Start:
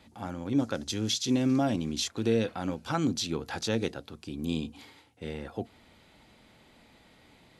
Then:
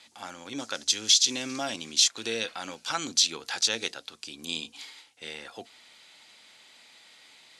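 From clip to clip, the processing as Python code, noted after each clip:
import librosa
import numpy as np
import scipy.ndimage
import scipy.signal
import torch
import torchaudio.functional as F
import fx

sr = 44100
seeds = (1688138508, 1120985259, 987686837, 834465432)

y = fx.weighting(x, sr, curve='ITU-R 468')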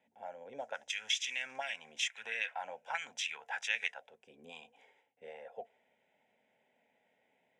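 y = fx.fixed_phaser(x, sr, hz=1200.0, stages=6)
y = fx.auto_wah(y, sr, base_hz=280.0, top_hz=2200.0, q=2.4, full_db=-30.5, direction='up')
y = y * 10.0 ** (4.5 / 20.0)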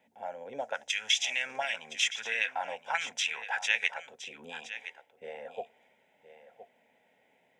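y = x + 10.0 ** (-13.0 / 20.0) * np.pad(x, (int(1017 * sr / 1000.0), 0))[:len(x)]
y = y * 10.0 ** (6.5 / 20.0)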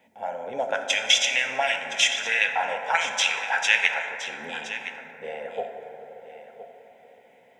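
y = fx.rev_plate(x, sr, seeds[0], rt60_s=4.0, hf_ratio=0.25, predelay_ms=0, drr_db=3.5)
y = y * 10.0 ** (7.5 / 20.0)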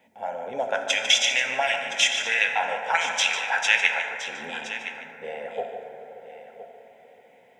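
y = x + 10.0 ** (-10.5 / 20.0) * np.pad(x, (int(148 * sr / 1000.0), 0))[:len(x)]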